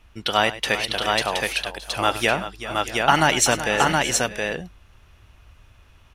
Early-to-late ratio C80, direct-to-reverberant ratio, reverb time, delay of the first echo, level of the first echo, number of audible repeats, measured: no reverb audible, no reverb audible, no reverb audible, 98 ms, −15.5 dB, 4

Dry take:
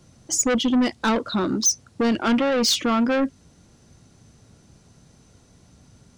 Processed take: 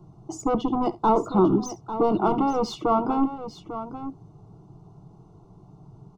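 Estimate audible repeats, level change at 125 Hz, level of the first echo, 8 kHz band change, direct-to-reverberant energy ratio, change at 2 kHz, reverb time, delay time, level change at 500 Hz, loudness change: 2, +3.5 dB, −19.0 dB, −19.5 dB, no reverb audible, −17.0 dB, no reverb audible, 68 ms, +0.5 dB, −3.0 dB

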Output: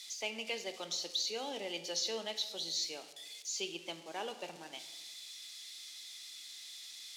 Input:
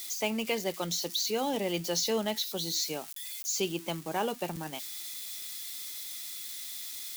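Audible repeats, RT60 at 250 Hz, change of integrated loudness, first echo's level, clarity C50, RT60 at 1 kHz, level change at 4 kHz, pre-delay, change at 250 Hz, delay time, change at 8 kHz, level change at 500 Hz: no echo audible, 1.1 s, −7.0 dB, no echo audible, 10.5 dB, 1.1 s, −3.5 dB, 24 ms, −14.5 dB, no echo audible, −7.0 dB, −9.5 dB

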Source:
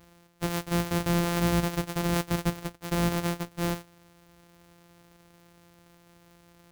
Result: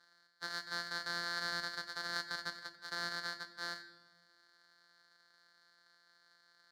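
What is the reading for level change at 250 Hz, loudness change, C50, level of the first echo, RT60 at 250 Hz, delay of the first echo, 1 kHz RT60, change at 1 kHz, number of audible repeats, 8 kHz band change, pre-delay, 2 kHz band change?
−28.0 dB, −11.0 dB, 13.0 dB, no echo audible, 1.9 s, no echo audible, 0.95 s, −11.0 dB, no echo audible, −14.0 dB, 4 ms, −2.0 dB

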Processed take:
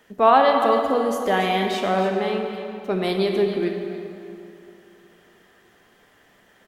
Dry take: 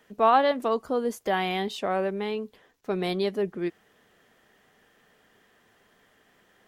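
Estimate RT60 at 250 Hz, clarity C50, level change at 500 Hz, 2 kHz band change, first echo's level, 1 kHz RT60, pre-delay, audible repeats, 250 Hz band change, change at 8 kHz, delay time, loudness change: 2.7 s, 3.5 dB, +6.0 dB, +6.0 dB, −12.0 dB, 2.7 s, 22 ms, 1, +6.0 dB, can't be measured, 279 ms, +5.5 dB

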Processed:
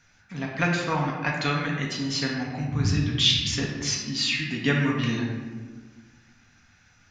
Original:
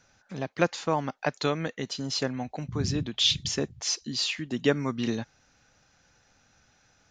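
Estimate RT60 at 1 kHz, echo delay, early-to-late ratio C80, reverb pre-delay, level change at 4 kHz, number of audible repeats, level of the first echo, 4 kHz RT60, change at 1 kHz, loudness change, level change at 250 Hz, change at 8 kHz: 1.3 s, no echo audible, 4.5 dB, 4 ms, +3.5 dB, no echo audible, no echo audible, 0.85 s, +2.5 dB, +3.5 dB, +4.0 dB, +1.5 dB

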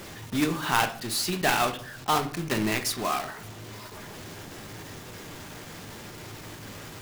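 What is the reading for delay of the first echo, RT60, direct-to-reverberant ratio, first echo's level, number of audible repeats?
no echo audible, 0.60 s, 7.0 dB, no echo audible, no echo audible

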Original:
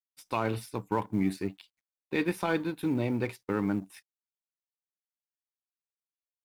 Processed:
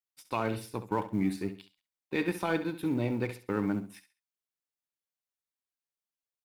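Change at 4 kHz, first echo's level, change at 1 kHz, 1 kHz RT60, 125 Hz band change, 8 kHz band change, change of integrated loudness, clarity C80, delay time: −1.0 dB, −12.0 dB, −1.5 dB, no reverb audible, −1.0 dB, −1.0 dB, −1.0 dB, no reverb audible, 67 ms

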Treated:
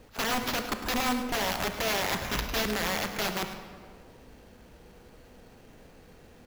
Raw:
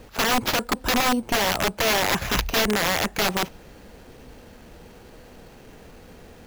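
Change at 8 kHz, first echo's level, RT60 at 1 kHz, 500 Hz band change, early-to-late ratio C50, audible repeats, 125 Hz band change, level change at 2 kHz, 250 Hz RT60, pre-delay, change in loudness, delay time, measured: −7.5 dB, −12.5 dB, 1.8 s, −7.0 dB, 7.0 dB, 1, −6.5 dB, −7.0 dB, 2.2 s, 25 ms, −7.0 dB, 105 ms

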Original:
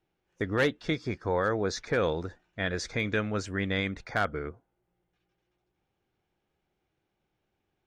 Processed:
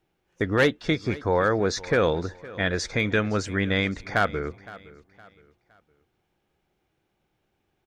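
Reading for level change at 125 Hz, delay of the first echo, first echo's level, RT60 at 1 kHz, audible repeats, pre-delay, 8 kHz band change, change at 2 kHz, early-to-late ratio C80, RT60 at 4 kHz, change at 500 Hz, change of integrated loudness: +5.5 dB, 514 ms, −19.5 dB, no reverb audible, 2, no reverb audible, +5.5 dB, +5.5 dB, no reverb audible, no reverb audible, +5.5 dB, +5.5 dB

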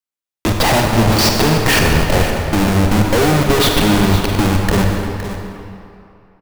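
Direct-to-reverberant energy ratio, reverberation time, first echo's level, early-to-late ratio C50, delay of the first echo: 1.0 dB, 2.8 s, −12.0 dB, 1.5 dB, 514 ms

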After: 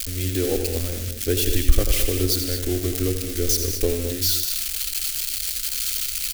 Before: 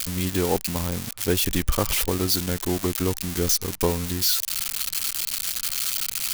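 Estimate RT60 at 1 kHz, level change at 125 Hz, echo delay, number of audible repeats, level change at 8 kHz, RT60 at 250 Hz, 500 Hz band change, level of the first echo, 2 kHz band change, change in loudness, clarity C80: no reverb audible, +2.5 dB, 86 ms, 3, +1.0 dB, no reverb audible, +1.5 dB, −8.0 dB, −1.5 dB, +1.0 dB, no reverb audible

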